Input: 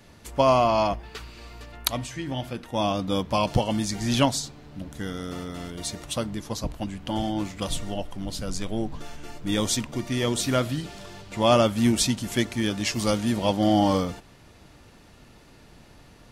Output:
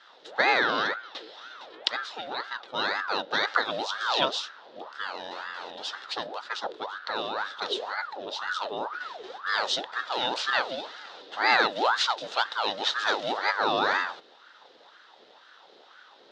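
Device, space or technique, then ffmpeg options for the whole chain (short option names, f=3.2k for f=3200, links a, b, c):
voice changer toy: -af "aeval=exprs='val(0)*sin(2*PI*930*n/s+930*0.6/2*sin(2*PI*2*n/s))':c=same,highpass=500,equalizer=f=680:t=q:w=4:g=-4,equalizer=f=1.1k:t=q:w=4:g=-6,equalizer=f=2.3k:t=q:w=4:g=-9,equalizer=f=3.7k:t=q:w=4:g=8,lowpass=f=4.7k:w=0.5412,lowpass=f=4.7k:w=1.3066,volume=3dB"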